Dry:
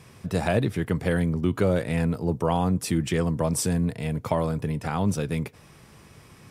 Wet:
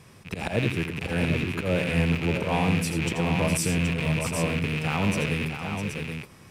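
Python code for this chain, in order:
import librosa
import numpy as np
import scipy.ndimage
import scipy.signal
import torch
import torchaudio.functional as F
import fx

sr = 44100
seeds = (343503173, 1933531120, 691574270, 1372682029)

y = fx.rattle_buzz(x, sr, strikes_db=-36.0, level_db=-18.0)
y = fx.auto_swell(y, sr, attack_ms=107.0)
y = fx.echo_multitap(y, sr, ms=(84, 655, 775), db=(-8.0, -8.5, -6.5))
y = y * librosa.db_to_amplitude(-1.5)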